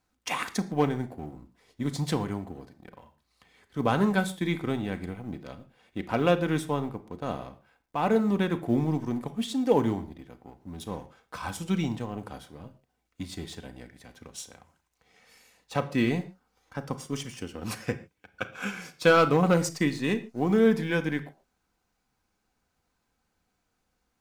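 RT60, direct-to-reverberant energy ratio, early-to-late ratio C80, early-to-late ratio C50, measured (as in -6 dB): no single decay rate, 7.0 dB, 18.5 dB, 15.0 dB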